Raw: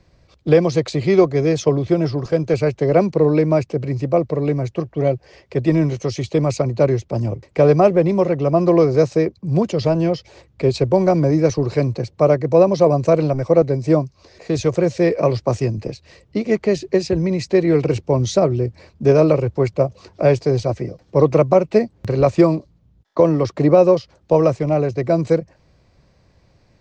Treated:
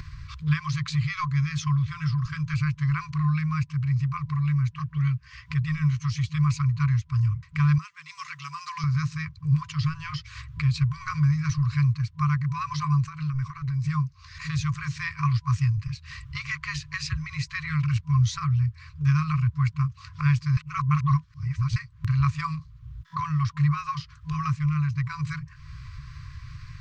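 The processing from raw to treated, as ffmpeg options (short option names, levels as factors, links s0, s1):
-filter_complex "[0:a]asettb=1/sr,asplit=3[s0][s1][s2];[s0]atrim=end=7.784[s3];[s1]atrim=start=7.78:end=8.84,asetpts=PTS-STARTPTS,afade=t=in:d=0.004:c=qsin,afade=t=out:st=1.056:d=0.004:c=qsin,aderivative[s4];[s2]atrim=start=8.836[s5];[s3][s4]acrossfade=d=0.004:c1=hsin:c2=qsin[s6];[s6][s5]acrossfade=d=0.004:c1=qsin:c2=hsin,asettb=1/sr,asplit=3[s7][s8][s9];[s7]atrim=end=13.034[s10];[s8]atrim=start=13.03:end=13.89,asetpts=PTS-STARTPTS,afade=t=in:d=0.004:c=qsin,afade=t=out:st=0.856:d=0.004:c=qsin,acompressor=threshold=0.1:ratio=6:attack=3.2:release=140:knee=1:detection=peak[s11];[s9]atrim=start=13.886[s12];[s10][s11]acrossfade=d=0.004:c1=hsin:c2=qsin[s13];[s13][s12]acrossfade=d=0.004:c1=qsin:c2=hsin,asplit=3[s14][s15][s16];[s14]atrim=end=20.572[s17];[s15]atrim=start=20.568:end=21.762,asetpts=PTS-STARTPTS,areverse[s18];[s16]atrim=start=21.758[s19];[s17][s18]acrossfade=d=0.004:c1=hsin:c2=hsin[s20];[s20][s19]acrossfade=d=0.004:c1=hsin:c2=hsin,afftfilt=real='re*(1-between(b*sr/4096,160,1000))':imag='im*(1-between(b*sr/4096,160,1000))':win_size=4096:overlap=0.75,highshelf=f=3000:g=-9.5,acompressor=mode=upward:threshold=0.0631:ratio=2.5"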